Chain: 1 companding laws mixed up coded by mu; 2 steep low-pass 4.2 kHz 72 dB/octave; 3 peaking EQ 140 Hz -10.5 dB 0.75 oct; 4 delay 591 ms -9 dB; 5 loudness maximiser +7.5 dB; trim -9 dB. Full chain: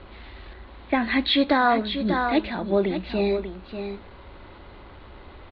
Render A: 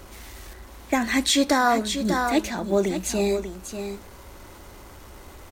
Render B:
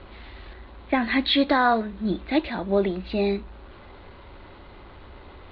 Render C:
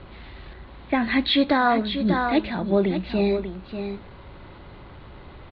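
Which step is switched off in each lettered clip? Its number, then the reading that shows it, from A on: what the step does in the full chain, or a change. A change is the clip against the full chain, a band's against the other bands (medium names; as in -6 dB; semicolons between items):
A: 2, momentary loudness spread change +6 LU; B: 4, momentary loudness spread change -6 LU; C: 3, 125 Hz band +4.0 dB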